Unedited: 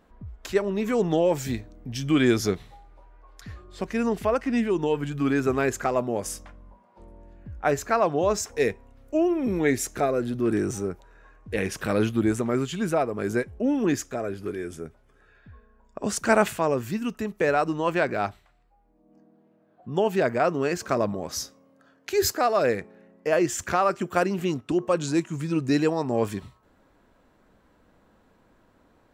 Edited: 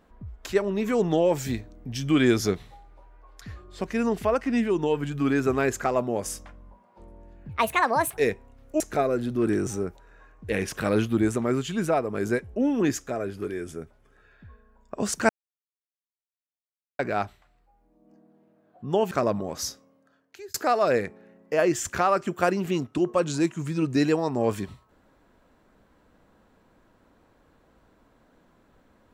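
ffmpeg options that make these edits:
ffmpeg -i in.wav -filter_complex "[0:a]asplit=8[link_01][link_02][link_03][link_04][link_05][link_06][link_07][link_08];[link_01]atrim=end=7.494[link_09];[link_02]atrim=start=7.49:end=8.56,asetpts=PTS-STARTPTS,asetrate=69237,aresample=44100,atrim=end_sample=30055,asetpts=PTS-STARTPTS[link_10];[link_03]atrim=start=8.556:end=9.192[link_11];[link_04]atrim=start=9.838:end=16.33,asetpts=PTS-STARTPTS,afade=type=out:start_time=6.488:duration=0.004:curve=hsin[link_12];[link_05]atrim=start=16.33:end=18.03,asetpts=PTS-STARTPTS,volume=0[link_13];[link_06]atrim=start=18.03:end=20.152,asetpts=PTS-STARTPTS,afade=type=in:duration=0.004:curve=hsin[link_14];[link_07]atrim=start=20.848:end=22.28,asetpts=PTS-STARTPTS,afade=type=out:start_time=0.552:duration=0.88[link_15];[link_08]atrim=start=22.28,asetpts=PTS-STARTPTS,afade=type=in:duration=0.004:curve=hsin[link_16];[link_09][link_10]acrossfade=duration=0.004:curve1=hsin:curve2=hsin[link_17];[link_17][link_11]acrossfade=duration=0.004:curve1=hsin:curve2=hsin[link_18];[link_12][link_13][link_14]concat=n=3:v=0:a=1[link_19];[link_18][link_19]acrossfade=duration=0.004:curve1=hsin:curve2=hsin[link_20];[link_15][link_16]concat=n=2:v=0:a=1[link_21];[link_20][link_21]acrossfade=duration=0.004:curve1=hsin:curve2=hsin" out.wav

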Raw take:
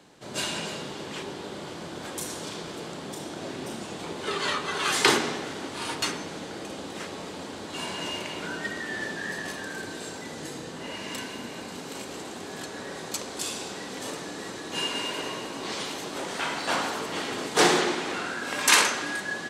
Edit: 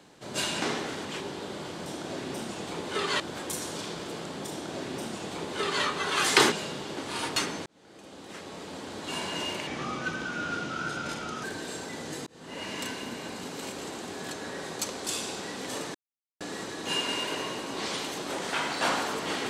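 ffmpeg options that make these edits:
ffmpeg -i in.wav -filter_complex "[0:a]asplit=12[link_01][link_02][link_03][link_04][link_05][link_06][link_07][link_08][link_09][link_10][link_11][link_12];[link_01]atrim=end=0.622[link_13];[link_02]atrim=start=5.198:end=5.632[link_14];[link_03]atrim=start=1.068:end=1.882[link_15];[link_04]atrim=start=3.178:end=4.522[link_16];[link_05]atrim=start=1.878:end=5.202[link_17];[link_06]atrim=start=0.618:end=1.072[link_18];[link_07]atrim=start=5.628:end=6.32,asetpts=PTS-STARTPTS,afade=type=out:start_time=0.688:duration=0.004:curve=hsin[link_19];[link_08]atrim=start=6.32:end=8.334,asetpts=PTS-STARTPTS,afade=type=in:duration=1.42[link_20];[link_09]atrim=start=8.33:end=9.76,asetpts=PTS-STARTPTS,asetrate=35721,aresample=44100[link_21];[link_10]atrim=start=9.756:end=10.59,asetpts=PTS-STARTPTS,afade=type=out:start_time=0.83:duration=0.004:curve=hsin[link_22];[link_11]atrim=start=10.59:end=14.27,asetpts=PTS-STARTPTS,afade=type=in:duration=0.38,afade=type=out:start_time=3.676:duration=0.004:curve=hsin,apad=pad_dur=0.46[link_23];[link_12]atrim=start=14.27,asetpts=PTS-STARTPTS,afade=type=in:duration=0.004:curve=hsin[link_24];[link_13][link_14]acrossfade=duration=0.004:curve1=hsin:curve2=hsin[link_25];[link_25][link_15]acrossfade=duration=0.004:curve1=hsin:curve2=hsin[link_26];[link_26][link_16]acrossfade=duration=0.004:curve1=hsin:curve2=hsin[link_27];[link_27][link_17]acrossfade=duration=0.004:curve1=hsin:curve2=hsin[link_28];[link_28][link_18]acrossfade=duration=0.004:curve1=hsin:curve2=hsin[link_29];[link_19][link_20]concat=n=2:v=0:a=1[link_30];[link_29][link_30]acrossfade=duration=0.004:curve1=hsin:curve2=hsin[link_31];[link_31][link_21]acrossfade=duration=0.004:curve1=hsin:curve2=hsin[link_32];[link_22][link_23][link_24]concat=n=3:v=0:a=1[link_33];[link_32][link_33]acrossfade=duration=0.004:curve1=hsin:curve2=hsin" out.wav

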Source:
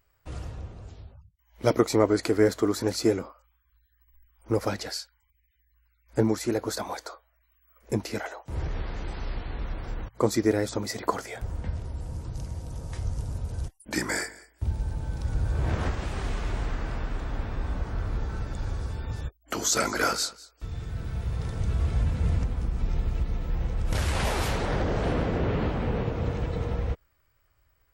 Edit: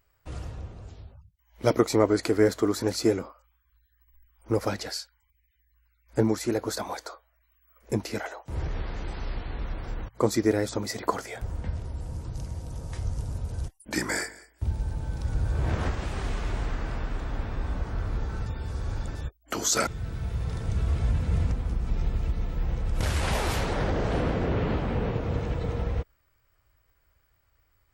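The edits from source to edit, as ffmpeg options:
ffmpeg -i in.wav -filter_complex "[0:a]asplit=4[link_01][link_02][link_03][link_04];[link_01]atrim=end=18.462[link_05];[link_02]atrim=start=18.458:end=19.152,asetpts=PTS-STARTPTS,areverse[link_06];[link_03]atrim=start=19.148:end=19.872[link_07];[link_04]atrim=start=20.788[link_08];[link_05][link_06]acrossfade=duration=0.004:curve1=hsin:curve2=hsin[link_09];[link_09][link_07]acrossfade=duration=0.004:curve1=hsin:curve2=hsin[link_10];[link_10][link_08]acrossfade=duration=0.004:curve1=hsin:curve2=hsin" out.wav

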